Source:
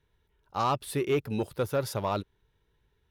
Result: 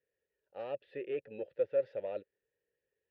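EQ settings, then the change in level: vowel filter e; air absorption 320 m; +2.5 dB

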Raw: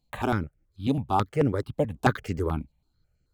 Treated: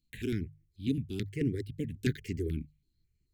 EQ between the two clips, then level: elliptic band-stop 390–1900 Hz, stop band 40 dB; notches 50/100/150 Hz; -4.0 dB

